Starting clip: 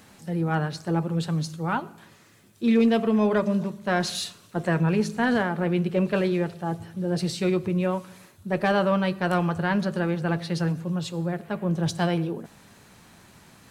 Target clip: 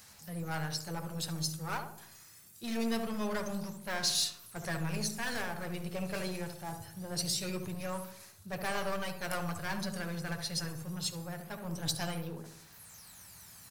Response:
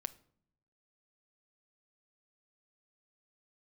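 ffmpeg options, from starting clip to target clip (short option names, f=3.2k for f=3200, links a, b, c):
-filter_complex "[0:a]equalizer=f=300:w=0.72:g=-13,acrossover=split=4500[a][b];[a]aeval=exprs='clip(val(0),-1,0.0188)':c=same[c];[b]aphaser=in_gain=1:out_gain=1:delay=1.2:decay=0.75:speed=0.24:type=sinusoidal[d];[c][d]amix=inputs=2:normalize=0,asplit=2[e][f];[f]adelay=70,lowpass=f=1k:p=1,volume=-5dB,asplit=2[g][h];[h]adelay=70,lowpass=f=1k:p=1,volume=0.54,asplit=2[i][j];[j]adelay=70,lowpass=f=1k:p=1,volume=0.54,asplit=2[k][l];[l]adelay=70,lowpass=f=1k:p=1,volume=0.54,asplit=2[m][n];[n]adelay=70,lowpass=f=1k:p=1,volume=0.54,asplit=2[o][p];[p]adelay=70,lowpass=f=1k:p=1,volume=0.54,asplit=2[q][r];[r]adelay=70,lowpass=f=1k:p=1,volume=0.54[s];[e][g][i][k][m][o][q][s]amix=inputs=8:normalize=0,aexciter=amount=1.2:drive=9.4:freq=4.5k,volume=-4.5dB"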